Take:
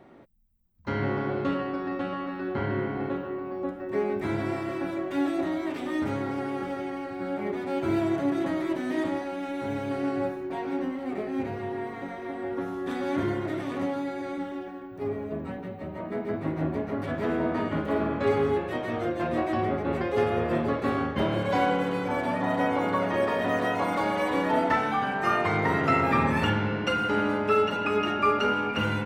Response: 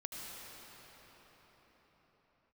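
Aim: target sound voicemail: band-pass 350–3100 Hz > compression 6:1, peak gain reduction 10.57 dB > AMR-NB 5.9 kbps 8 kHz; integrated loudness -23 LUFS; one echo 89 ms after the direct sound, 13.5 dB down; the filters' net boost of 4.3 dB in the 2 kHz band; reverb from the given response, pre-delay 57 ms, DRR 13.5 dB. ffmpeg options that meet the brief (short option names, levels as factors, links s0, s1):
-filter_complex "[0:a]equalizer=f=2000:t=o:g=6,aecho=1:1:89:0.211,asplit=2[s0][s1];[1:a]atrim=start_sample=2205,adelay=57[s2];[s1][s2]afir=irnorm=-1:irlink=0,volume=0.211[s3];[s0][s3]amix=inputs=2:normalize=0,highpass=350,lowpass=3100,acompressor=threshold=0.0398:ratio=6,volume=3.76" -ar 8000 -c:a libopencore_amrnb -b:a 5900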